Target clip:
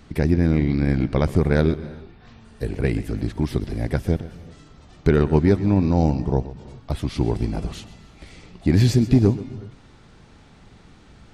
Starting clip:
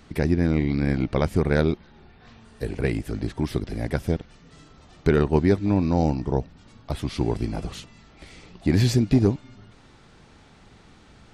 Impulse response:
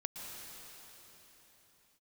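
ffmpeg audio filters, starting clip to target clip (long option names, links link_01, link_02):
-filter_complex "[0:a]lowshelf=frequency=260:gain=4.5,asplit=2[link_01][link_02];[1:a]atrim=start_sample=2205,afade=type=out:start_time=0.33:duration=0.01,atrim=end_sample=14994,adelay=130[link_03];[link_02][link_03]afir=irnorm=-1:irlink=0,volume=-13dB[link_04];[link_01][link_04]amix=inputs=2:normalize=0"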